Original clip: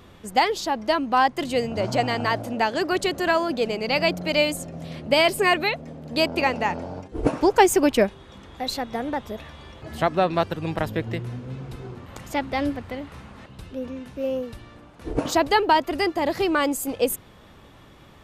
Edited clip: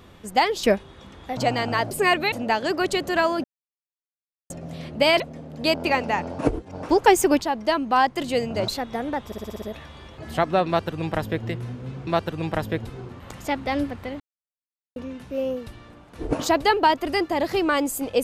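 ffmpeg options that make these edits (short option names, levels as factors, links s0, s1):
-filter_complex "[0:a]asplit=22[s0][s1][s2][s3][s4][s5][s6][s7][s8][s9][s10][s11][s12][s13][s14][s15][s16][s17][s18][s19][s20][s21];[s0]atrim=end=0.632[s22];[s1]atrim=start=7.938:end=8.682[s23];[s2]atrim=start=1.888:end=2.432[s24];[s3]atrim=start=5.308:end=5.722[s25];[s4]atrim=start=2.428:end=3.55,asetpts=PTS-STARTPTS,afade=t=out:st=1.118:d=0.004:c=hsin[s26];[s5]atrim=start=3.55:end=4.61,asetpts=PTS-STARTPTS,volume=0[s27];[s6]atrim=start=4.61:end=5.312,asetpts=PTS-STARTPTS,afade=t=in:d=0.004:c=hsin[s28];[s7]atrim=start=5.718:end=6.912[s29];[s8]atrim=start=6.908:end=7.352,asetpts=PTS-STARTPTS,areverse[s30];[s9]atrim=start=7.348:end=7.942[s31];[s10]atrim=start=0.628:end=1.892[s32];[s11]atrim=start=8.678:end=9.322[s33];[s12]atrim=start=9.258:end=9.322[s34];[s13]atrim=start=9.258:end=9.322[s35];[s14]atrim=start=9.258:end=9.322[s36];[s15]atrim=start=9.258:end=9.322[s37];[s16]atrim=start=9.258:end=9.322[s38];[s17]atrim=start=9.258:end=11.712[s39];[s18]atrim=start=10.308:end=11.092[s40];[s19]atrim=start=11.708:end=13.06,asetpts=PTS-STARTPTS,afade=t=out:st=1.348:d=0.004:c=hsin[s41];[s20]atrim=start=13.06:end=13.82,asetpts=PTS-STARTPTS,volume=0[s42];[s21]atrim=start=13.82,asetpts=PTS-STARTPTS,afade=t=in:d=0.004:c=hsin[s43];[s22][s23]acrossfade=d=0.004:c1=hsin:c2=hsin[s44];[s44][s24]acrossfade=d=0.004:c1=hsin:c2=hsin[s45];[s45][s25]acrossfade=d=0.004:c1=hsin:c2=hsin[s46];[s26][s27][s28]concat=n=3:v=0:a=1[s47];[s46][s47]acrossfade=d=0.004:c1=hsin:c2=hsin[s48];[s48][s29]acrossfade=d=0.004:c1=hsin:c2=hsin[s49];[s49][s30]acrossfade=d=0.004:c1=hsin:c2=hsin[s50];[s50][s31]acrossfade=d=0.004:c1=hsin:c2=hsin[s51];[s51][s32]acrossfade=d=0.004:c1=hsin:c2=hsin[s52];[s52][s33]acrossfade=d=0.004:c1=hsin:c2=hsin[s53];[s53][s34]acrossfade=d=0.004:c1=hsin:c2=hsin[s54];[s54][s35]acrossfade=d=0.004:c1=hsin:c2=hsin[s55];[s55][s36]acrossfade=d=0.004:c1=hsin:c2=hsin[s56];[s56][s37]acrossfade=d=0.004:c1=hsin:c2=hsin[s57];[s57][s38]acrossfade=d=0.004:c1=hsin:c2=hsin[s58];[s58][s39]acrossfade=d=0.004:c1=hsin:c2=hsin[s59];[s59][s40]acrossfade=d=0.004:c1=hsin:c2=hsin[s60];[s41][s42][s43]concat=n=3:v=0:a=1[s61];[s60][s61]acrossfade=d=0.004:c1=hsin:c2=hsin"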